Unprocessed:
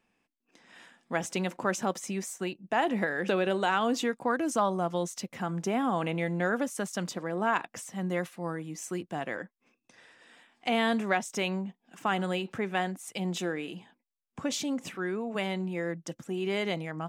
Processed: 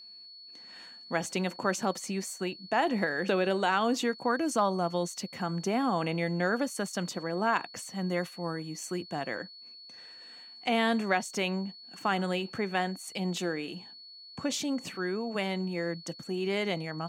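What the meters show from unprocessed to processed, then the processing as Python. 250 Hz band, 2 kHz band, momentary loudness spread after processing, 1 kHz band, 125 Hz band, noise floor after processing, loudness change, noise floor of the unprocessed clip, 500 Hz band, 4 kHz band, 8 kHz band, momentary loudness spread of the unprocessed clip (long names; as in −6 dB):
0.0 dB, 0.0 dB, 18 LU, 0.0 dB, 0.0 dB, −50 dBFS, 0.0 dB, −82 dBFS, 0.0 dB, +2.0 dB, 0.0 dB, 9 LU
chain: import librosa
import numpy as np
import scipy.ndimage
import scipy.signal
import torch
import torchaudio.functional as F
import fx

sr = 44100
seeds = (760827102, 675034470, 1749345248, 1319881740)

y = x + 10.0 ** (-47.0 / 20.0) * np.sin(2.0 * np.pi * 4400.0 * np.arange(len(x)) / sr)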